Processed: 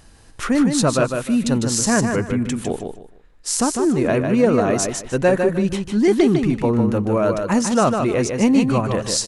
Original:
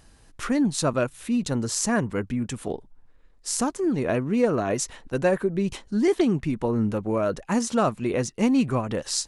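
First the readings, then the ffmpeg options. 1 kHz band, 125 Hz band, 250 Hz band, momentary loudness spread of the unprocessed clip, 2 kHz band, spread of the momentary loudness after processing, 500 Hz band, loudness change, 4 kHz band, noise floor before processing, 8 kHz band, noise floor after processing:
+6.5 dB, +6.5 dB, +6.5 dB, 7 LU, +6.5 dB, 6 LU, +6.5 dB, +6.5 dB, +6.5 dB, -55 dBFS, +6.5 dB, -47 dBFS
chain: -af "acontrast=42,aresample=32000,aresample=44100,aecho=1:1:152|304|456:0.531|0.127|0.0306"

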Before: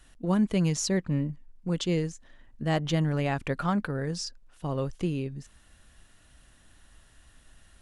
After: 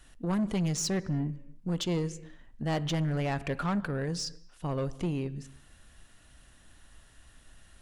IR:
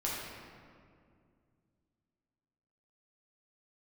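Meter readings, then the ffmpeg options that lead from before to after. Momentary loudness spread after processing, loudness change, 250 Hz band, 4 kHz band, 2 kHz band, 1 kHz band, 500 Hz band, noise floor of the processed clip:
9 LU, -2.5 dB, -3.0 dB, -1.0 dB, -3.0 dB, -2.5 dB, -3.0 dB, -58 dBFS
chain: -filter_complex "[0:a]asplit=2[a][b];[1:a]atrim=start_sample=2205,afade=t=out:st=0.4:d=0.01,atrim=end_sample=18081,asetrate=48510,aresample=44100[c];[b][c]afir=irnorm=-1:irlink=0,volume=-21dB[d];[a][d]amix=inputs=2:normalize=0,asoftclip=type=tanh:threshold=-24.5dB"

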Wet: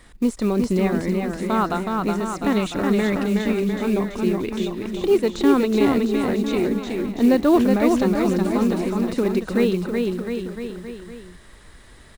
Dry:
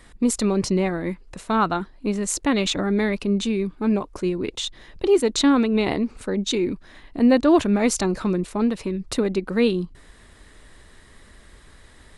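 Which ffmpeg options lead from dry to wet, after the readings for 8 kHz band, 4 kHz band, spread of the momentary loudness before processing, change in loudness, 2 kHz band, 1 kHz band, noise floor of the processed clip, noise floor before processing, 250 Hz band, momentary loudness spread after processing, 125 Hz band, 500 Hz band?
-9.0 dB, -5.0 dB, 10 LU, +1.0 dB, +0.5 dB, +1.0 dB, -46 dBFS, -50 dBFS, +2.0 dB, 9 LU, +2.0 dB, +2.0 dB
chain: -filter_complex "[0:a]deesser=0.9,acrusher=bits=7:mode=log:mix=0:aa=0.000001,asplit=2[a][b];[b]aecho=0:1:370|703|1003|1272|1515:0.631|0.398|0.251|0.158|0.1[c];[a][c]amix=inputs=2:normalize=0"

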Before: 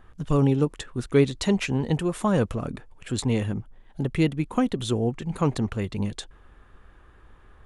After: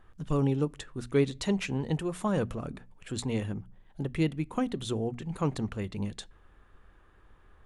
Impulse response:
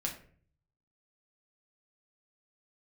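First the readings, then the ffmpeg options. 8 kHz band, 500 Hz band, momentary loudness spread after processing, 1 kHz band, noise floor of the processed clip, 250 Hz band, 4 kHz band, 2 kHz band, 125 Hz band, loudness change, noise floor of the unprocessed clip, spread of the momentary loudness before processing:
-6.0 dB, -6.0 dB, 13 LU, -6.0 dB, -59 dBFS, -6.0 dB, -6.0 dB, -6.0 dB, -6.5 dB, -6.0 dB, -54 dBFS, 12 LU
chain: -filter_complex "[0:a]bandreject=f=60:t=h:w=6,bandreject=f=120:t=h:w=6,bandreject=f=180:t=h:w=6,bandreject=f=240:t=h:w=6,asplit=2[a][b];[1:a]atrim=start_sample=2205,asetrate=48510,aresample=44100[c];[b][c]afir=irnorm=-1:irlink=0,volume=-21.5dB[d];[a][d]amix=inputs=2:normalize=0,volume=-6.5dB"

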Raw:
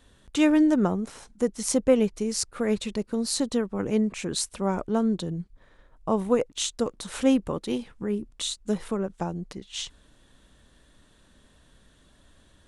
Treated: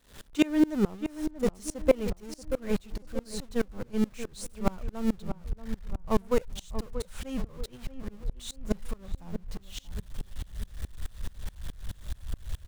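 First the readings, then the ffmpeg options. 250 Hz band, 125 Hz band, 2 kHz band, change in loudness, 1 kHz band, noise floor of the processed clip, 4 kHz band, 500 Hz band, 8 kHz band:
-5.5 dB, -2.0 dB, -4.0 dB, -6.5 dB, -6.0 dB, -54 dBFS, -10.0 dB, -5.0 dB, -12.0 dB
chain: -filter_complex "[0:a]aeval=exprs='val(0)+0.5*0.0422*sgn(val(0))':c=same,agate=range=-12dB:threshold=-22dB:ratio=16:detection=peak,asubboost=boost=10.5:cutoff=85,asplit=2[a][b];[b]adelay=633,lowpass=f=1.5k:p=1,volume=-10dB,asplit=2[c][d];[d]adelay=633,lowpass=f=1.5k:p=1,volume=0.44,asplit=2[e][f];[f]adelay=633,lowpass=f=1.5k:p=1,volume=0.44,asplit=2[g][h];[h]adelay=633,lowpass=f=1.5k:p=1,volume=0.44,asplit=2[i][j];[j]adelay=633,lowpass=f=1.5k:p=1,volume=0.44[k];[a][c][e][g][i][k]amix=inputs=6:normalize=0,aeval=exprs='val(0)*pow(10,-27*if(lt(mod(-4.7*n/s,1),2*abs(-4.7)/1000),1-mod(-4.7*n/s,1)/(2*abs(-4.7)/1000),(mod(-4.7*n/s,1)-2*abs(-4.7)/1000)/(1-2*abs(-4.7)/1000))/20)':c=same,volume=2.5dB"

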